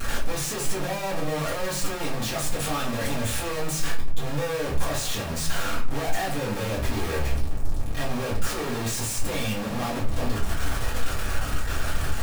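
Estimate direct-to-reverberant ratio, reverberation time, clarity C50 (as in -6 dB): -8.0 dB, 0.50 s, 8.5 dB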